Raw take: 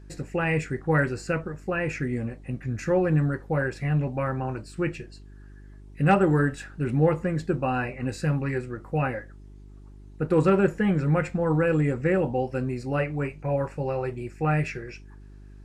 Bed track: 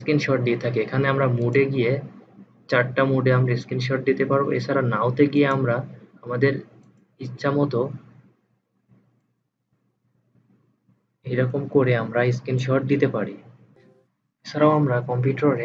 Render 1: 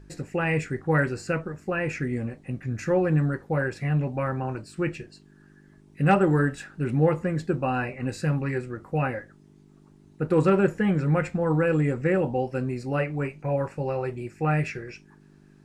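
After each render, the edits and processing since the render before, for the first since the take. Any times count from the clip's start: de-hum 50 Hz, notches 2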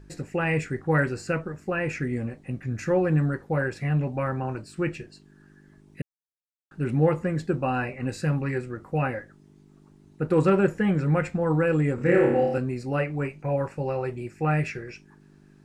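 6.02–6.71 mute; 11.95–12.58 flutter echo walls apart 5 m, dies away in 0.75 s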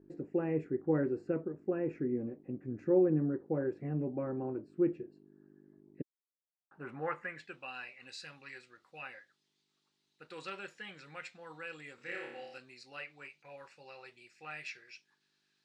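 band-pass sweep 340 Hz -> 3900 Hz, 6.11–7.74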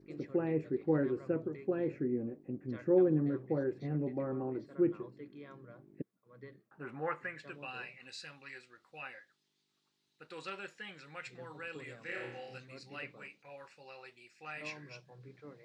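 add bed track -32.5 dB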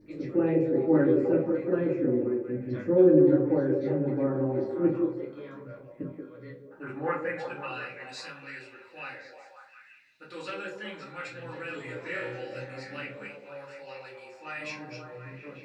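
delay with a stepping band-pass 0.179 s, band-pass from 400 Hz, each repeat 0.7 oct, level -1.5 dB; shoebox room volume 130 m³, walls furnished, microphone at 2.5 m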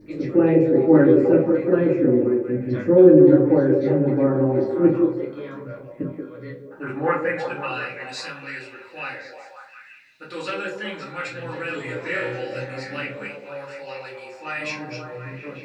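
gain +8.5 dB; limiter -3 dBFS, peak gain reduction 2.5 dB

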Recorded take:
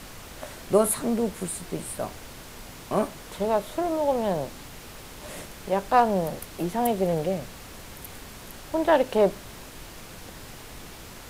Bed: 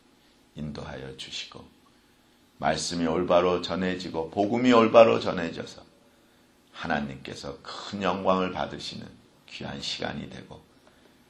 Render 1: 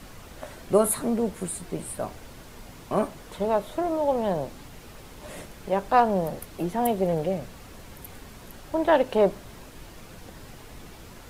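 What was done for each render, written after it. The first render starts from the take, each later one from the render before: denoiser 6 dB, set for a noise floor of -44 dBFS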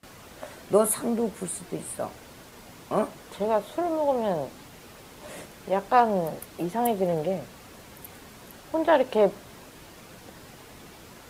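HPF 150 Hz 6 dB/oct; gate with hold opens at -38 dBFS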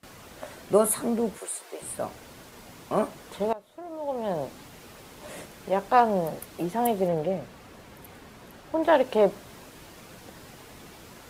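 1.38–1.82 HPF 440 Hz 24 dB/oct; 3.53–4.44 fade in quadratic, from -18.5 dB; 7.08–8.83 high shelf 4200 Hz -7.5 dB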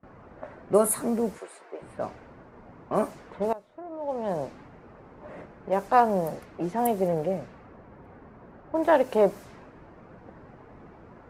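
low-pass opened by the level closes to 1100 Hz, open at -22.5 dBFS; bell 3400 Hz -7.5 dB 0.79 oct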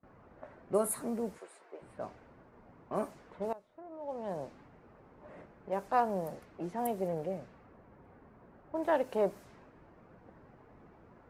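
gain -9 dB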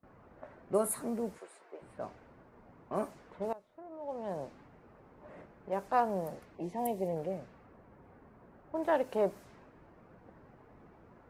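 6.55–7.16 Butterworth band-stop 1400 Hz, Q 1.8

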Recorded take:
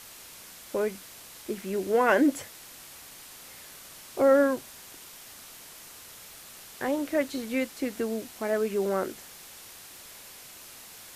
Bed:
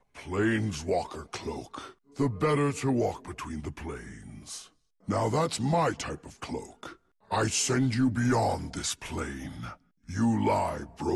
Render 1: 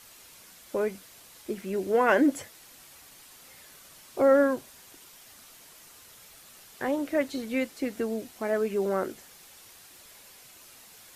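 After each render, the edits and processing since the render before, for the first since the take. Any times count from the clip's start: denoiser 6 dB, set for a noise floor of -48 dBFS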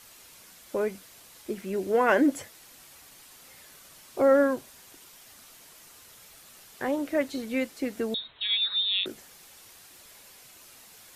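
8.14–9.06 inverted band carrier 4000 Hz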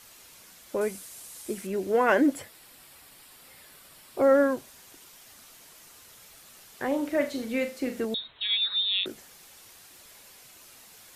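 0.81–1.67 bell 9300 Hz +11 dB 1.2 oct; 2.33–4.22 bell 6300 Hz -9 dB 0.26 oct; 6.87–8.05 flutter echo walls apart 6.9 m, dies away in 0.31 s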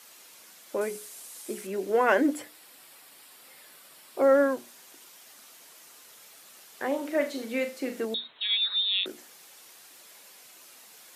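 HPF 240 Hz 12 dB/oct; notches 60/120/180/240/300/360/420 Hz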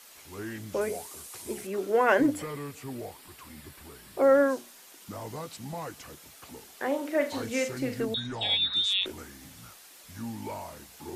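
add bed -12 dB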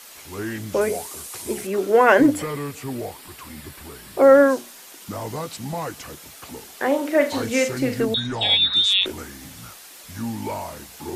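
gain +8.5 dB; limiter -2 dBFS, peak gain reduction 1.5 dB

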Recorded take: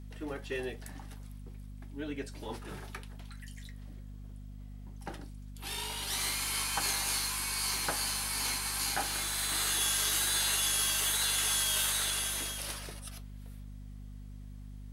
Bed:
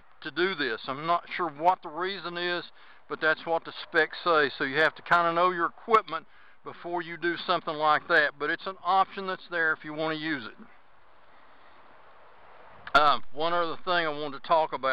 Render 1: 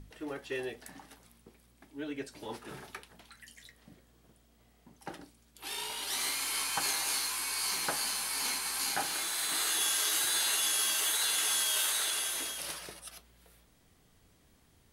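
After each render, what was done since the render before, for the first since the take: notches 50/100/150/200/250 Hz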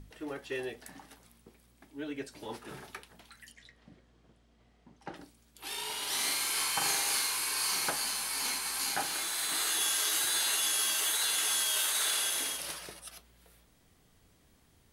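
3.52–5.16 air absorption 93 m; 5.82–7.9 flutter echo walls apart 7.2 m, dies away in 0.6 s; 11.89–12.57 flutter echo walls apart 10 m, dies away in 0.85 s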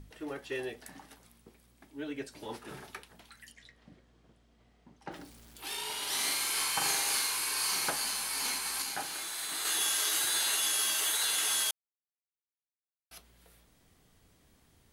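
5.11–5.77 zero-crossing step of -52 dBFS; 8.82–9.65 gain -4 dB; 11.71–13.11 mute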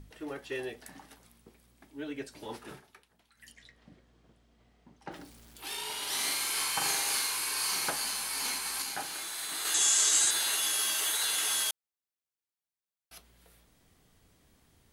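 2.7–3.47 dip -12.5 dB, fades 0.12 s; 9.74–10.31 synth low-pass 7500 Hz, resonance Q 5.4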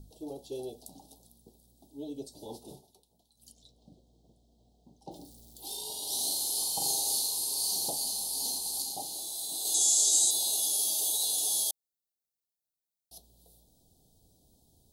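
elliptic band-stop 780–3800 Hz, stop band 70 dB; high shelf 9400 Hz +5.5 dB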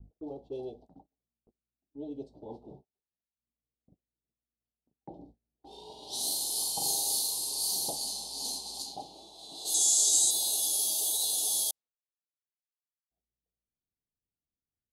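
low-pass opened by the level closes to 580 Hz, open at -27.5 dBFS; gate -53 dBFS, range -32 dB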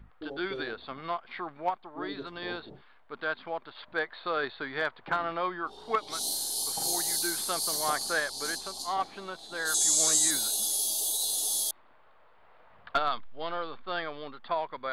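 add bed -7.5 dB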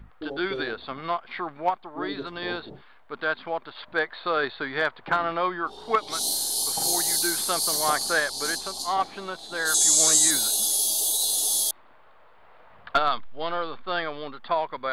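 gain +5.5 dB

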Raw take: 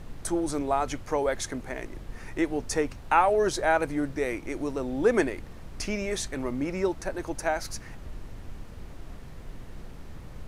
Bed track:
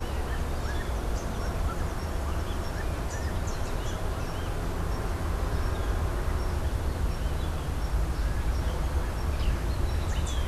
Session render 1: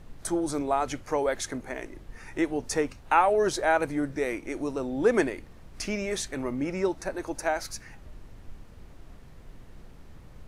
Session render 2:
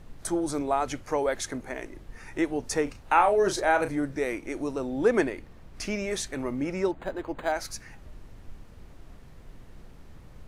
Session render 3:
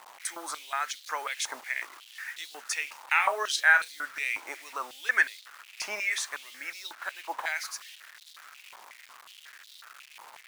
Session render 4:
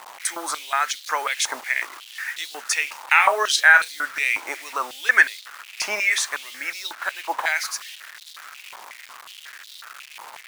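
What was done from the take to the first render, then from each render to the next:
noise print and reduce 6 dB
2.83–3.96 doubler 35 ms -9 dB; 5.08–5.82 bell 9700 Hz -4 dB 1.8 oct; 6.91–7.52 decimation joined by straight lines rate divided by 8×
requantised 8-bit, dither none; stepped high-pass 5.5 Hz 910–3800 Hz
gain +9 dB; limiter -2 dBFS, peak gain reduction 2.5 dB

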